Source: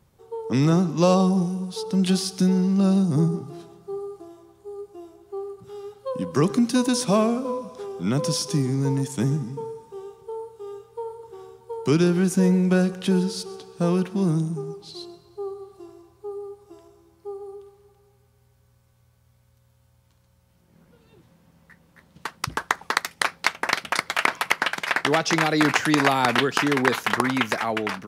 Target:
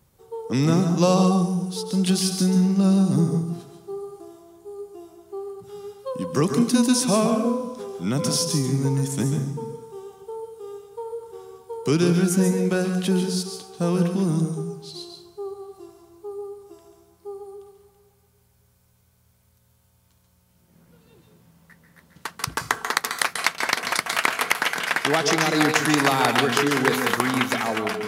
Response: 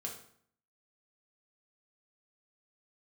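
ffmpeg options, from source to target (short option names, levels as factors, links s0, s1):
-filter_complex "[0:a]highshelf=f=6700:g=9,asplit=2[s0][s1];[1:a]atrim=start_sample=2205,afade=t=out:st=0.19:d=0.01,atrim=end_sample=8820,adelay=139[s2];[s1][s2]afir=irnorm=-1:irlink=0,volume=0.596[s3];[s0][s3]amix=inputs=2:normalize=0,volume=0.891"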